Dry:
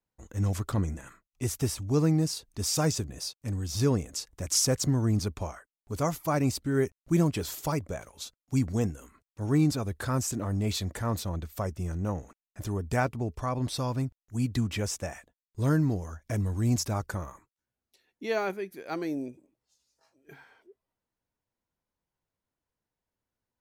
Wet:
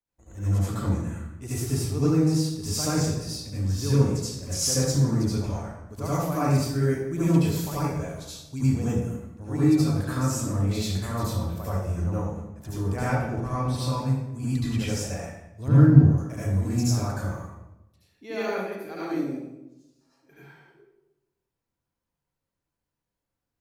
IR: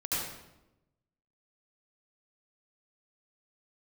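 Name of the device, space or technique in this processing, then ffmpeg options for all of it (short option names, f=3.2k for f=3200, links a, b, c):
bathroom: -filter_complex "[1:a]atrim=start_sample=2205[a];[0:a][a]afir=irnorm=-1:irlink=0,asettb=1/sr,asplit=3[b][c][d];[b]atrim=end=15.684[e];[c]atrim=start=15.68:end=16.18,asetpts=PTS-STARTPTS,afade=t=in:d=0.004:c=qsin,afade=t=out:st=0.496:d=0.004:c=qsin,bass=f=250:g=8,treble=f=4k:g=-12[f];[d]atrim=start=16.176[g];[e][f]acrossfade=d=0.004:c1=hsin:c2=qsin[h];[h][g]acrossfade=d=0.004:c1=qsin:c2=hsin,volume=-4.5dB"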